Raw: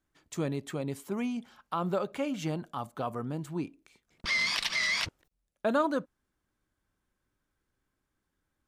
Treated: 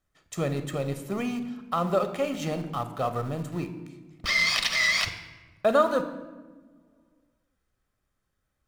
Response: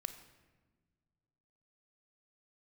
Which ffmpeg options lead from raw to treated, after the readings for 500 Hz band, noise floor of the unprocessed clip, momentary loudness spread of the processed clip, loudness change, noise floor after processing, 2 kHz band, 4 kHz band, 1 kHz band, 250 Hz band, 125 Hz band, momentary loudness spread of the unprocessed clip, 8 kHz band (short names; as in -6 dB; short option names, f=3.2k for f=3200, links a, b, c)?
+6.5 dB, -83 dBFS, 15 LU, +5.0 dB, -79 dBFS, +5.0 dB, +5.0 dB, +5.5 dB, +2.0 dB, +5.0 dB, 10 LU, +5.5 dB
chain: -filter_complex "[0:a]bandreject=f=75.31:t=h:w=4,bandreject=f=150.62:t=h:w=4,bandreject=f=225.93:t=h:w=4,bandreject=f=301.24:t=h:w=4,asplit=2[a][b];[b]aeval=exprs='val(0)*gte(abs(val(0)),0.0158)':c=same,volume=-7dB[c];[a][c]amix=inputs=2:normalize=0[d];[1:a]atrim=start_sample=2205[e];[d][e]afir=irnorm=-1:irlink=0,volume=4.5dB"